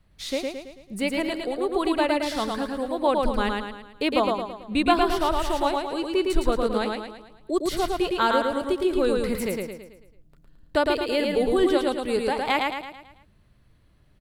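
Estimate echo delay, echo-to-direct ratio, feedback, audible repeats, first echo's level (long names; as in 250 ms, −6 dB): 110 ms, −2.0 dB, 47%, 5, −3.0 dB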